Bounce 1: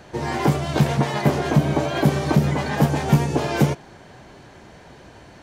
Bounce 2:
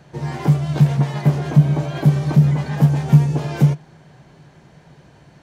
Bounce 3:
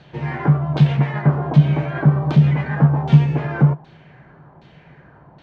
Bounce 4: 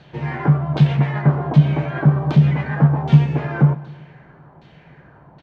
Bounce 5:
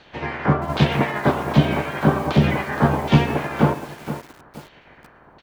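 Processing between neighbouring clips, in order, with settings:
peaking EQ 150 Hz +14.5 dB 0.43 oct; trim -6 dB
LFO low-pass saw down 1.3 Hz 890–3800 Hz
feedback delay 128 ms, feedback 57%, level -19.5 dB
spectral peaks clipped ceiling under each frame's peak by 19 dB; bit-crushed delay 471 ms, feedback 35%, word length 5-bit, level -11 dB; trim -3 dB

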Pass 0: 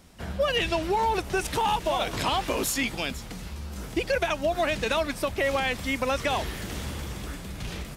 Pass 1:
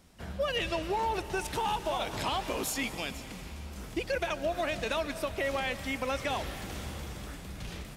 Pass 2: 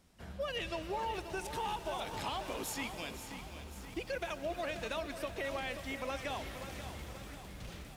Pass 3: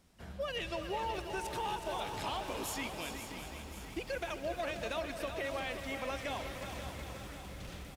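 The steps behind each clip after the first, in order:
algorithmic reverb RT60 3.8 s, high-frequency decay 0.95×, pre-delay 100 ms, DRR 12 dB; trim -6 dB
bit-crushed delay 534 ms, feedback 55%, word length 9-bit, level -9.5 dB; trim -7 dB
feedback delay 370 ms, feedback 53%, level -9 dB

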